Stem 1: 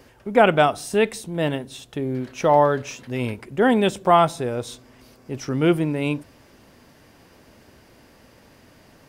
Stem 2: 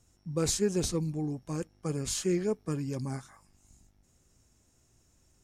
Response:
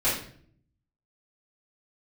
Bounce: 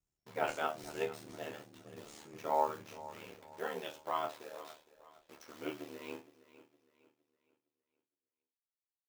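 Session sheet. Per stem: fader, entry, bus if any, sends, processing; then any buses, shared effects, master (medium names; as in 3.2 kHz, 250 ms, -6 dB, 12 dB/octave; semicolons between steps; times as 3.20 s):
-2.0 dB, 0.00 s, no send, echo send -17 dB, send-on-delta sampling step -29.5 dBFS; high-pass 460 Hz 12 dB/octave; peaking EQ 9.5 kHz -4 dB 0.48 oct
-6.0 dB, 0.00 s, no send, echo send -5.5 dB, tone controls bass -3 dB, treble -2 dB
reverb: none
echo: feedback delay 462 ms, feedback 37%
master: chord resonator A2 sus4, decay 0.27 s; ring modulator 38 Hz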